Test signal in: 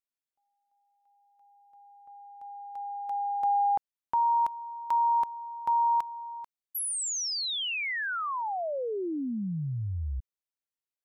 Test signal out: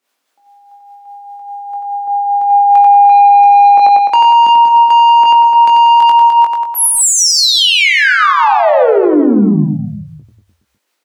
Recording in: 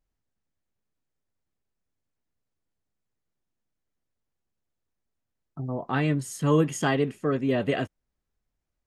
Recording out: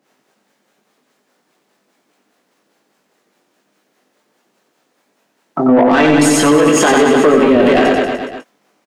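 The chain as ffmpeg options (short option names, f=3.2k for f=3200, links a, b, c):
-filter_complex "[0:a]highpass=f=200:w=0.5412,highpass=f=200:w=1.3066,tiltshelf=f=720:g=4.5,acompressor=threshold=-31dB:ratio=6:attack=98:release=44:knee=1:detection=rms,asplit=2[a][b];[b]highpass=f=720:p=1,volume=19dB,asoftclip=type=tanh:threshold=-16dB[c];[a][c]amix=inputs=2:normalize=0,lowpass=f=4.4k:p=1,volume=-6dB,acrossover=split=420[d][e];[d]aeval=exprs='val(0)*(1-0.7/2+0.7/2*cos(2*PI*4.9*n/s))':c=same[f];[e]aeval=exprs='val(0)*(1-0.7/2-0.7/2*cos(2*PI*4.9*n/s))':c=same[g];[f][g]amix=inputs=2:normalize=0,asplit=2[h][i];[i]adelay=20,volume=-6dB[j];[h][j]amix=inputs=2:normalize=0,asplit=2[k][l];[l]aecho=0:1:90|189|297.9|417.7|549.5:0.631|0.398|0.251|0.158|0.1[m];[k][m]amix=inputs=2:normalize=0,alimiter=level_in=22.5dB:limit=-1dB:release=50:level=0:latency=1,volume=-1dB"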